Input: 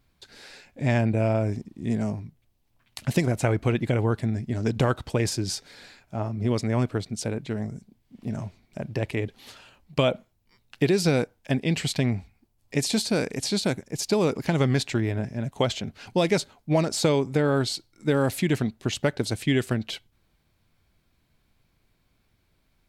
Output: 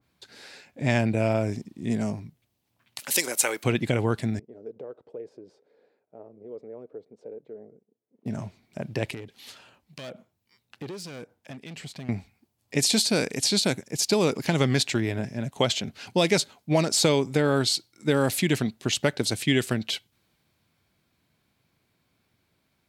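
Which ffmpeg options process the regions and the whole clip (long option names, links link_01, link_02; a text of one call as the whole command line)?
ffmpeg -i in.wav -filter_complex "[0:a]asettb=1/sr,asplit=3[link_01][link_02][link_03];[link_01]atrim=end=2.994[link_04];[link_02]atrim=start=2.99:end=3.64,asetpts=PTS-STARTPTS,afade=type=in:duration=0.004:curve=qsin,afade=type=out:start_time=0.646:duration=0.004:curve=qsin,highpass=390,aemphasis=mode=production:type=bsi,bandreject=frequency=680:width=5.6[link_05];[link_03]atrim=start=3.636[link_06];[link_04][link_05]acrossfade=duration=0.004:curve1=hsin:curve2=qsin[link_07];[link_07][link_06]acrossfade=duration=0.004:curve1=qsin:curve2=hsin,asettb=1/sr,asplit=3[link_08][link_09][link_10];[link_08]atrim=end=4.394[link_11];[link_09]atrim=start=4.39:end=8.26,asetpts=PTS-STARTPTS,afade=type=in:duration=0.004:curve=qsin,afade=type=out:start_time=3.866:duration=0.004:curve=qsin,aeval=exprs='if(lt(val(0),0),0.708*val(0),val(0))':channel_layout=same,acompressor=threshold=-28dB:ratio=2.5:attack=3.2:release=140:knee=1:detection=peak,bandpass=frequency=460:width_type=q:width=4.8[link_12];[link_10]atrim=start=8.256[link_13];[link_11][link_12]acrossfade=duration=0.004:curve1=hsin:curve2=qsin[link_14];[link_14][link_13]acrossfade=duration=0.004:curve1=qsin:curve2=hsin,asettb=1/sr,asplit=3[link_15][link_16][link_17];[link_15]atrim=end=9.144[link_18];[link_16]atrim=start=9.14:end=12.09,asetpts=PTS-STARTPTS,afade=type=in:duration=0.004:curve=qsin,afade=type=out:start_time=2.946:duration=0.004:curve=qsin,volume=21.5dB,asoftclip=hard,volume=-21.5dB,acompressor=threshold=-37dB:ratio=3:attack=3.2:release=140:knee=1:detection=peak,acrossover=split=1600[link_19][link_20];[link_19]aeval=exprs='val(0)*(1-0.5/2+0.5/2*cos(2*PI*1.8*n/s))':channel_layout=same[link_21];[link_20]aeval=exprs='val(0)*(1-0.5/2-0.5/2*cos(2*PI*1.8*n/s))':channel_layout=same[link_22];[link_21][link_22]amix=inputs=2:normalize=0[link_23];[link_17]atrim=start=12.086[link_24];[link_18][link_23]acrossfade=duration=0.004:curve1=hsin:curve2=qsin[link_25];[link_25][link_24]acrossfade=duration=0.004:curve1=qsin:curve2=hsin,highpass=110,adynamicequalizer=threshold=0.00794:dfrequency=2100:dqfactor=0.7:tfrequency=2100:tqfactor=0.7:attack=5:release=100:ratio=0.375:range=3:mode=boostabove:tftype=highshelf" out.wav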